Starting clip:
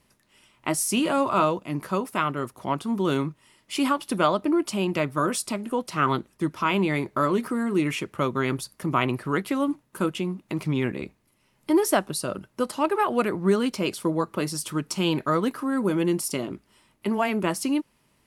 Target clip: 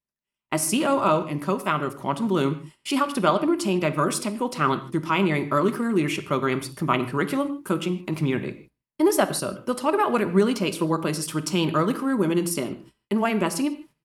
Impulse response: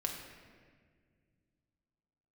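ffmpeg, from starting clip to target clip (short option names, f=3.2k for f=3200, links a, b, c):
-filter_complex "[0:a]atempo=1.3,agate=range=-32dB:threshold=-52dB:ratio=16:detection=peak,asplit=2[a][b];[1:a]atrim=start_sample=2205,afade=t=out:st=0.21:d=0.01,atrim=end_sample=9702[c];[b][c]afir=irnorm=-1:irlink=0,volume=-3dB[d];[a][d]amix=inputs=2:normalize=0,volume=-3dB"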